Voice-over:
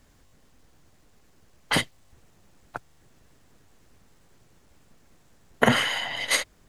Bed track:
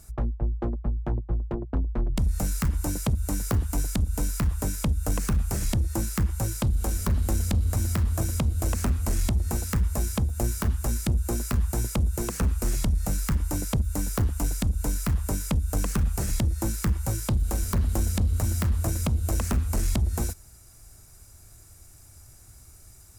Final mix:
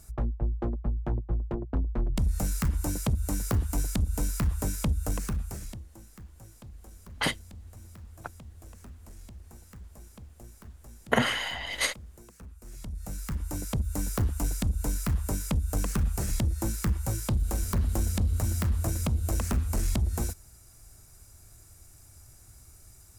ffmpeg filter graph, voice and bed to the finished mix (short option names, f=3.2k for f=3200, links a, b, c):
-filter_complex "[0:a]adelay=5500,volume=-4.5dB[a];[1:a]volume=18dB,afade=t=out:st=4.9:d=0.96:silence=0.0944061,afade=t=in:st=12.63:d=1.42:silence=0.1[b];[a][b]amix=inputs=2:normalize=0"